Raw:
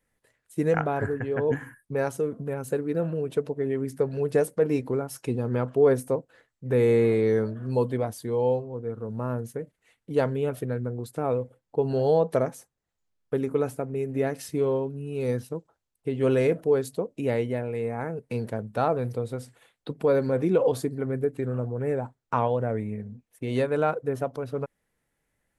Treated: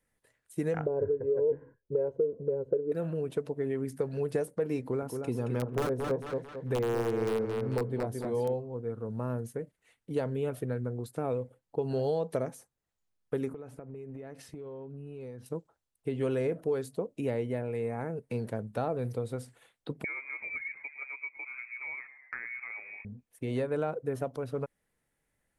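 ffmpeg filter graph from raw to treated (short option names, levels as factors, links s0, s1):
-filter_complex "[0:a]asettb=1/sr,asplit=3[s0][s1][s2];[s0]atrim=end=0.864[s3];[s1]atrim=start=0.86:end=2.92,asetpts=PTS-STARTPTS,afade=t=in:d=0.004:c=qsin,afade=t=out:st=2.056:d=0.004:c=qsin,lowpass=f=460:t=q:w=2.4,equalizer=f=120:w=6.1:g=-14,aecho=1:1:2:0.64,atrim=end_sample=90846[s4];[s2]atrim=start=2.916[s5];[s3][s4]acrossfade=d=0.004:c1=hsin:c2=qsin[s6];[s6][s5]acrossfade=d=0.004:c1=qsin:c2=hsin,asettb=1/sr,asplit=3[s7][s8][s9];[s7]atrim=end=4.804[s10];[s8]atrim=start=4.8:end=8.54,asetpts=PTS-STARTPTS,afade=t=in:d=0.004:c=qsin,afade=t=out:st=3.736:d=0.004:c=qsin,aeval=exprs='(mod(5.01*val(0)+1,2)-1)/5.01':c=same,asplit=2[s11][s12];[s12]adelay=222,lowpass=f=4000:p=1,volume=0.473,asplit=2[s13][s14];[s14]adelay=222,lowpass=f=4000:p=1,volume=0.35,asplit=2[s15][s16];[s16]adelay=222,lowpass=f=4000:p=1,volume=0.35,asplit=2[s17][s18];[s18]adelay=222,lowpass=f=4000:p=1,volume=0.35[s19];[s11][s13][s15][s17][s19]amix=inputs=5:normalize=0,atrim=end_sample=164934[s20];[s9]atrim=start=8.536[s21];[s10][s20]acrossfade=d=0.004:c1=hsin:c2=qsin[s22];[s22][s21]acrossfade=d=0.004:c1=qsin:c2=hsin,asettb=1/sr,asplit=3[s23][s24][s25];[s23]atrim=end=13.534[s26];[s24]atrim=start=13.53:end=15.46,asetpts=PTS-STARTPTS,afade=t=in:d=0.004:c=qsin,afade=t=out:st=1.926:d=0.004:c=qsin,lowpass=f=2500:p=1,acompressor=threshold=0.0158:ratio=16:attack=3.2:release=140:knee=1:detection=peak[s27];[s25]atrim=start=15.456[s28];[s26][s27]acrossfade=d=0.004:c1=hsin:c2=qsin[s29];[s29][s28]acrossfade=d=0.004:c1=qsin:c2=hsin,asettb=1/sr,asplit=3[s30][s31][s32];[s30]atrim=end=20.044[s33];[s31]atrim=start=20.04:end=23.05,asetpts=PTS-STARTPTS,afade=t=in:d=0.004:c=qsin,afade=t=out:st=3.006:d=0.004:c=qsin,highpass=f=360:t=q:w=1.8,asplit=5[s34][s35][s36][s37][s38];[s35]adelay=108,afreqshift=73,volume=0.119[s39];[s36]adelay=216,afreqshift=146,volume=0.0556[s40];[s37]adelay=324,afreqshift=219,volume=0.0263[s41];[s38]adelay=432,afreqshift=292,volume=0.0123[s42];[s34][s39][s40][s41][s42]amix=inputs=5:normalize=0,atrim=end_sample=132741,lowpass=f=2300:t=q:w=0.5098,lowpass=f=2300:t=q:w=0.6013,lowpass=f=2300:t=q:w=0.9,lowpass=f=2300:t=q:w=2.563,afreqshift=-2700[s43];[s32]atrim=start=23.046[s44];[s33][s43]acrossfade=d=0.004:c1=hsin:c2=qsin[s45];[s45][s44]acrossfade=d=0.004:c1=qsin:c2=hsin,acrossover=split=740|1700[s46][s47][s48];[s46]acompressor=threshold=0.0562:ratio=4[s49];[s47]acompressor=threshold=0.00891:ratio=4[s50];[s48]acompressor=threshold=0.00447:ratio=4[s51];[s49][s50][s51]amix=inputs=3:normalize=0,equalizer=f=9300:w=5.4:g=4,volume=0.708"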